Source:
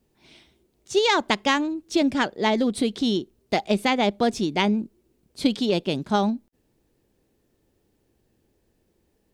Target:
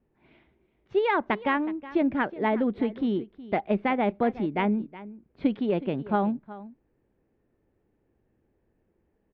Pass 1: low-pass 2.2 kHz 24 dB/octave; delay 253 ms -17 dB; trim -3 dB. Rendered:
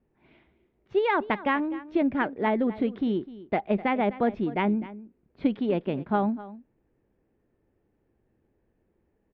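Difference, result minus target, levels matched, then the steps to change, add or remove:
echo 115 ms early
change: delay 368 ms -17 dB

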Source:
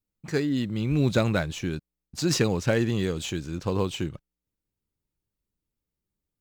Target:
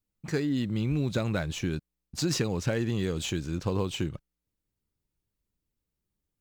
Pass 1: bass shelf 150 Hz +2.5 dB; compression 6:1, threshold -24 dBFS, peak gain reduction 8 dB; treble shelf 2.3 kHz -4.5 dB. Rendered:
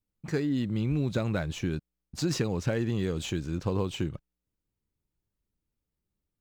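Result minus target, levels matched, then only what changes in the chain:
4 kHz band -3.0 dB
remove: treble shelf 2.3 kHz -4.5 dB

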